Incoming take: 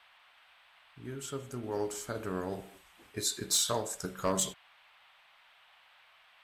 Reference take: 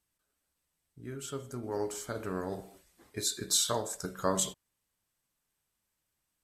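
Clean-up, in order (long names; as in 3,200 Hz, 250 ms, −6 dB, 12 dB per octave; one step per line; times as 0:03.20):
clipped peaks rebuilt −20.5 dBFS
noise reduction from a noise print 21 dB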